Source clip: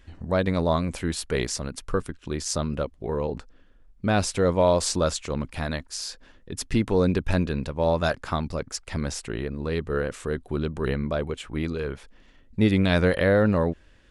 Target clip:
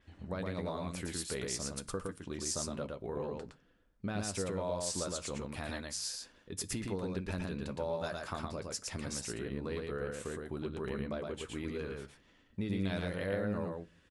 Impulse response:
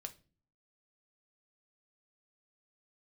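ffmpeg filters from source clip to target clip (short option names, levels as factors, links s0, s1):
-filter_complex "[0:a]highpass=f=92:p=1,acompressor=threshold=0.0398:ratio=4,aecho=1:1:114:0.708,asplit=2[s0][s1];[1:a]atrim=start_sample=2205,adelay=10[s2];[s1][s2]afir=irnorm=-1:irlink=0,volume=0.531[s3];[s0][s3]amix=inputs=2:normalize=0,adynamicequalizer=threshold=0.00501:dfrequency=6200:dqfactor=0.7:tfrequency=6200:tqfactor=0.7:attack=5:release=100:ratio=0.375:range=3:mode=boostabove:tftype=highshelf,volume=0.376"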